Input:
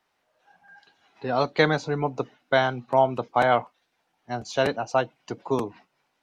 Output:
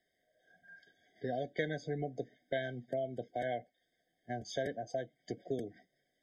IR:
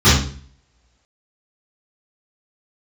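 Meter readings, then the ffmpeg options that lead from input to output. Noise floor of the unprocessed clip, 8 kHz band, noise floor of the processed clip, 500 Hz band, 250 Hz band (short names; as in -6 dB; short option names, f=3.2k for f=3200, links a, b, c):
-74 dBFS, n/a, -82 dBFS, -13.0 dB, -12.0 dB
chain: -af "acompressor=threshold=-32dB:ratio=2.5,afftfilt=real='re*eq(mod(floor(b*sr/1024/760),2),0)':imag='im*eq(mod(floor(b*sr/1024/760),2),0)':win_size=1024:overlap=0.75,volume=-4dB"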